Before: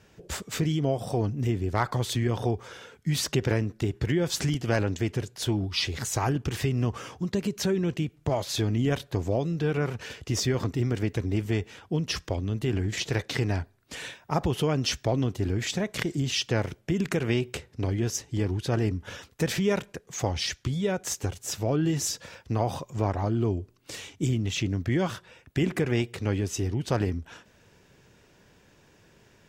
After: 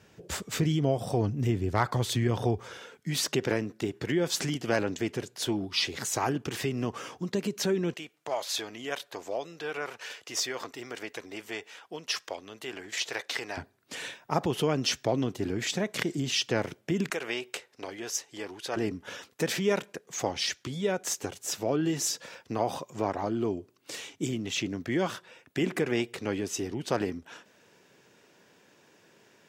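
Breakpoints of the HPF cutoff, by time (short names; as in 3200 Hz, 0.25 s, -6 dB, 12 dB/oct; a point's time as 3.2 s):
80 Hz
from 2.78 s 210 Hz
from 7.94 s 650 Hz
from 13.57 s 180 Hz
from 17.1 s 580 Hz
from 18.76 s 230 Hz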